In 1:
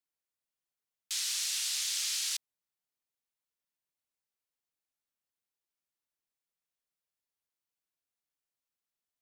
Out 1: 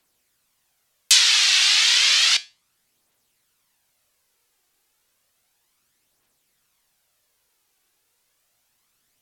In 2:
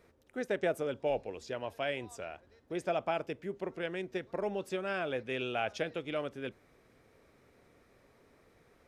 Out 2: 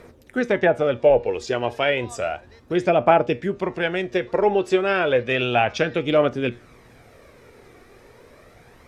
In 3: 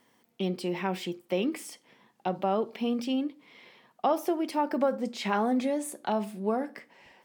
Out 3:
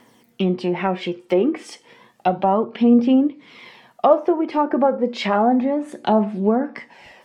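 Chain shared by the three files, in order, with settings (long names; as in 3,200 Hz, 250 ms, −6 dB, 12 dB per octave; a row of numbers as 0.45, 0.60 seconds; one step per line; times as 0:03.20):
treble cut that deepens with the level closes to 1,300 Hz, closed at −25.5 dBFS
tuned comb filter 120 Hz, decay 0.28 s, harmonics all, mix 50%
phase shifter 0.32 Hz, delay 2.7 ms, feedback 38%
normalise the peak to −2 dBFS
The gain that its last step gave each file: +27.0, +19.0, +14.5 decibels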